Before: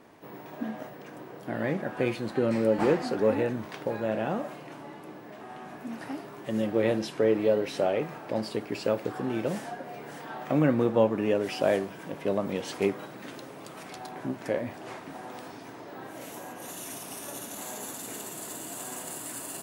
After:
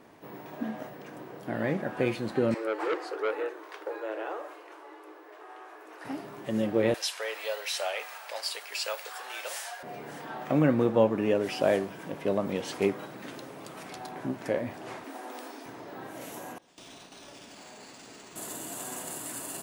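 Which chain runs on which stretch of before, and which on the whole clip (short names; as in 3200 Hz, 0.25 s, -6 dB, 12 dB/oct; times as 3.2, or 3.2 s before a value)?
2.54–6.05 rippled Chebyshev high-pass 310 Hz, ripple 6 dB + notches 50/100/150/200/250/300/350/400/450 Hz + core saturation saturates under 1300 Hz
6.94–9.83 Bessel high-pass 930 Hz, order 6 + high shelf 2500 Hz +11.5 dB
15.04–15.66 brick-wall FIR high-pass 220 Hz + high shelf 7500 Hz +5.5 dB
16.58–18.36 gate with hold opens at -29 dBFS, closes at -34 dBFS + compressor 2.5:1, threshold -48 dBFS + decimation joined by straight lines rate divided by 3×
whole clip: dry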